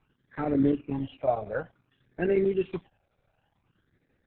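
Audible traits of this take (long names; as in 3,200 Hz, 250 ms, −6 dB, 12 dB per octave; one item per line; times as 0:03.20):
phaser sweep stages 12, 0.55 Hz, lowest notch 300–1,000 Hz
chopped level 11 Hz, depth 60%, duty 90%
Opus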